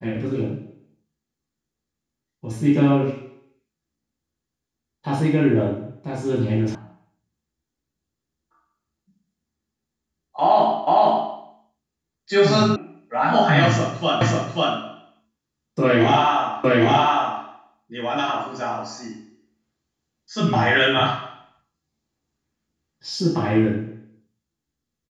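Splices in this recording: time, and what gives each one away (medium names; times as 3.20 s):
6.75 s: sound stops dead
10.87 s: repeat of the last 0.46 s
12.76 s: sound stops dead
14.21 s: repeat of the last 0.54 s
16.64 s: repeat of the last 0.81 s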